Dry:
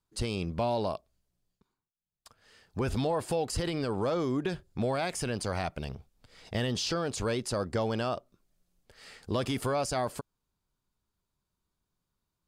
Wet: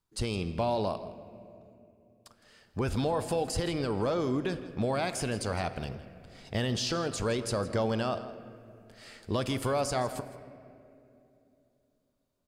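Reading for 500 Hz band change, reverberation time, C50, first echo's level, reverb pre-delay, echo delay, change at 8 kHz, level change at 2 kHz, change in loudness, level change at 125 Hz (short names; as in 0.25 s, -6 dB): +0.5 dB, 2.8 s, 11.5 dB, -16.5 dB, 5 ms, 0.163 s, 0.0 dB, +0.5 dB, +0.5 dB, +0.5 dB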